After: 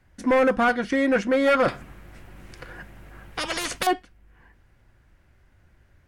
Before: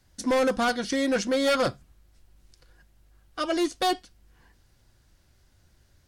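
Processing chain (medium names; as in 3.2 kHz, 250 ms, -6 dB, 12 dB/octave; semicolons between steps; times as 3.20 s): resonant high shelf 3.1 kHz -11 dB, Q 1.5; 1.68–3.87 s: spectrum-flattening compressor 4:1; trim +3.5 dB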